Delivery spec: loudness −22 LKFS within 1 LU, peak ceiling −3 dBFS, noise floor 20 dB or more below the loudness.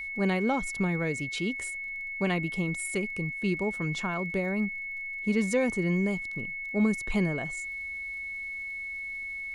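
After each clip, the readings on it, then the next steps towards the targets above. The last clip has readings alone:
crackle rate 28 per second; interfering tone 2,200 Hz; level of the tone −34 dBFS; integrated loudness −30.0 LKFS; sample peak −15.0 dBFS; target loudness −22.0 LKFS
→ click removal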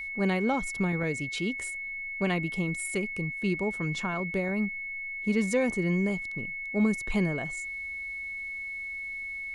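crackle rate 0 per second; interfering tone 2,200 Hz; level of the tone −34 dBFS
→ notch filter 2,200 Hz, Q 30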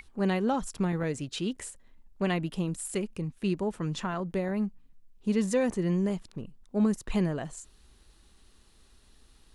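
interfering tone none found; integrated loudness −30.5 LKFS; sample peak −15.5 dBFS; target loudness −22.0 LKFS
→ level +8.5 dB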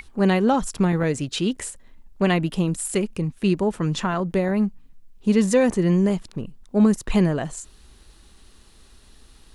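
integrated loudness −22.0 LKFS; sample peak −7.0 dBFS; background noise floor −52 dBFS

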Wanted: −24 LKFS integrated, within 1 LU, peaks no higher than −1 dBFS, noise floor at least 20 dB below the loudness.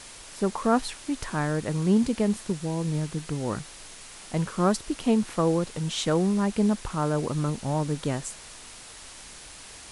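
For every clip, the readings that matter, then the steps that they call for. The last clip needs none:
background noise floor −45 dBFS; target noise floor −47 dBFS; integrated loudness −27.0 LKFS; sample peak −10.0 dBFS; target loudness −24.0 LKFS
→ noise reduction from a noise print 6 dB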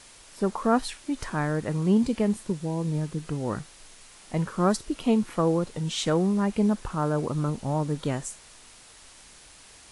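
background noise floor −51 dBFS; integrated loudness −27.0 LKFS; sample peak −10.0 dBFS; target loudness −24.0 LKFS
→ level +3 dB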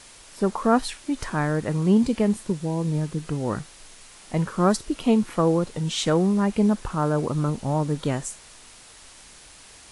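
integrated loudness −24.0 LKFS; sample peak −7.0 dBFS; background noise floor −48 dBFS

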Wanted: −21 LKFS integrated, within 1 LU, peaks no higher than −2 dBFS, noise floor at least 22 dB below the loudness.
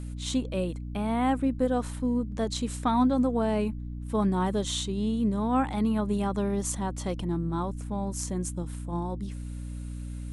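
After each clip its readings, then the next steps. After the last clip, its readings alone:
mains hum 60 Hz; hum harmonics up to 300 Hz; level of the hum −34 dBFS; integrated loudness −29.0 LKFS; sample peak −13.5 dBFS; target loudness −21.0 LKFS
→ hum removal 60 Hz, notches 5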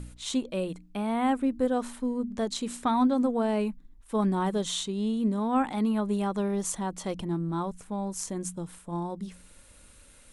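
mains hum none found; integrated loudness −29.5 LKFS; sample peak −15.0 dBFS; target loudness −21.0 LKFS
→ level +8.5 dB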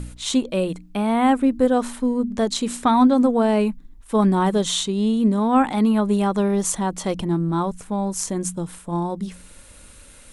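integrated loudness −21.0 LKFS; sample peak −6.5 dBFS; background noise floor −46 dBFS

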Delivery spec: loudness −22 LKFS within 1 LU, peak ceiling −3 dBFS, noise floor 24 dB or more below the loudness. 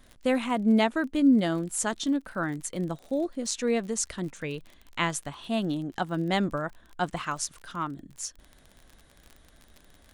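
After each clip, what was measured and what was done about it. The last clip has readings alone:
crackle rate 38 per second; integrated loudness −28.5 LKFS; sample peak −11.0 dBFS; target loudness −22.0 LKFS
→ click removal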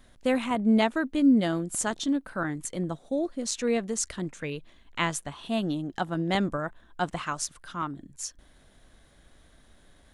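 crackle rate 0.20 per second; integrated loudness −28.5 LKFS; sample peak −11.0 dBFS; target loudness −22.0 LKFS
→ level +6.5 dB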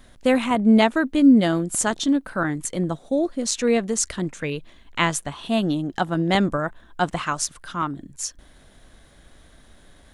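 integrated loudness −22.0 LKFS; sample peak −4.5 dBFS; background noise floor −52 dBFS

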